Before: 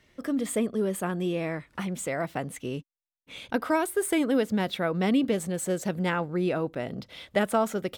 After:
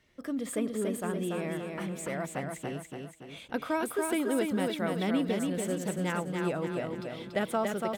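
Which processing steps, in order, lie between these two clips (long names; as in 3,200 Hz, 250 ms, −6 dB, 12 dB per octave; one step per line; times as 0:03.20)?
repeating echo 285 ms, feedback 48%, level −4 dB
level −5.5 dB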